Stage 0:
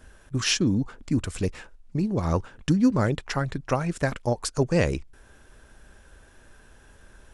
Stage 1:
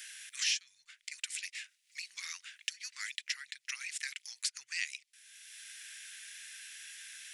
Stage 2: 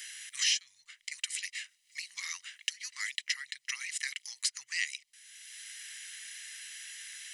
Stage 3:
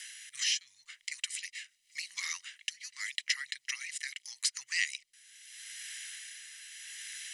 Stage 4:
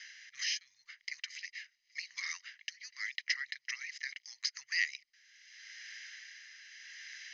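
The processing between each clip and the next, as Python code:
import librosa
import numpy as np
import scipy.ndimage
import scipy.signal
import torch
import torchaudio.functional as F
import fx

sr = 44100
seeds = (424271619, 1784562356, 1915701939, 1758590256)

y1 = scipy.signal.sosfilt(scipy.signal.ellip(4, 1.0, 70, 2000.0, 'highpass', fs=sr, output='sos'), x)
y1 = fx.band_squash(y1, sr, depth_pct=70)
y1 = y1 * 10.0 ** (1.0 / 20.0)
y2 = y1 + 0.5 * np.pad(y1, (int(1.0 * sr / 1000.0), 0))[:len(y1)]
y2 = y2 * 10.0 ** (2.5 / 20.0)
y3 = fx.rotary(y2, sr, hz=0.8)
y3 = y3 * 10.0 ** (2.5 / 20.0)
y4 = scipy.signal.sosfilt(scipy.signal.cheby1(6, 9, 6600.0, 'lowpass', fs=sr, output='sos'), y3)
y4 = y4 * 10.0 ** (1.0 / 20.0)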